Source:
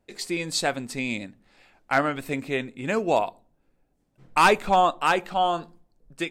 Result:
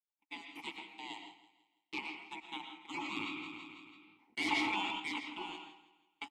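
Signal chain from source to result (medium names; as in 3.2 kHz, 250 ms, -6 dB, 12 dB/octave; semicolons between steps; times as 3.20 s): spectral gate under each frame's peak -25 dB weak; gate -47 dBFS, range -34 dB; waveshaping leveller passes 2; vowel filter u; feedback delay 165 ms, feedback 42%, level -15.5 dB; reverberation RT60 0.45 s, pre-delay 75 ms, DRR 5 dB; 2.77–5.00 s: decay stretcher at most 26 dB/s; trim +10 dB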